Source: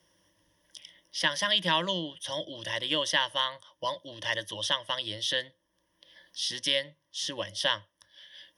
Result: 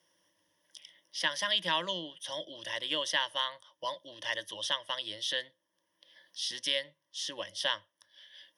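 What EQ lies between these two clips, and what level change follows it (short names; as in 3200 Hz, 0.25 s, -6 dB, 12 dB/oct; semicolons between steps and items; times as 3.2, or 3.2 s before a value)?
HPF 93 Hz; low shelf 210 Hz -11 dB; -3.5 dB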